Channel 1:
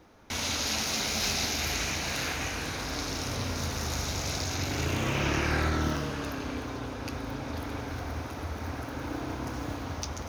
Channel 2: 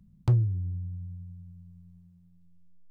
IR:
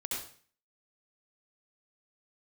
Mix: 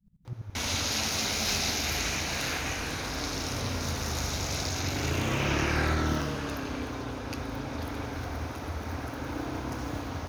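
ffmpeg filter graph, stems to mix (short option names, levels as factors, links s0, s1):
-filter_complex "[0:a]adelay=250,volume=1.06[s0];[1:a]acompressor=threshold=0.0224:ratio=6,aeval=exprs='val(0)*pow(10,-25*if(lt(mod(-12*n/s,1),2*abs(-12)/1000),1-mod(-12*n/s,1)/(2*abs(-12)/1000),(mod(-12*n/s,1)-2*abs(-12)/1000)/(1-2*abs(-12)/1000))/20)':c=same,volume=1.41[s1];[s0][s1]amix=inputs=2:normalize=0"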